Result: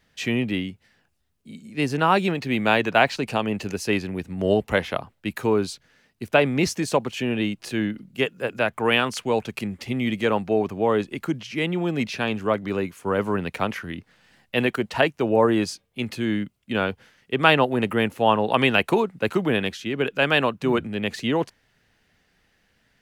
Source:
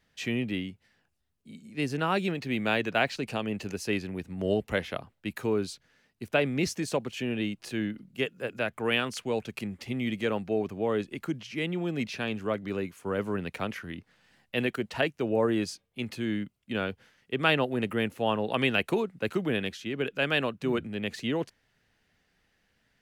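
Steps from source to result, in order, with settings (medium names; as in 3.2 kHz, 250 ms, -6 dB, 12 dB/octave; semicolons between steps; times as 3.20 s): dynamic bell 930 Hz, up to +6 dB, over -45 dBFS, Q 1.7; trim +6 dB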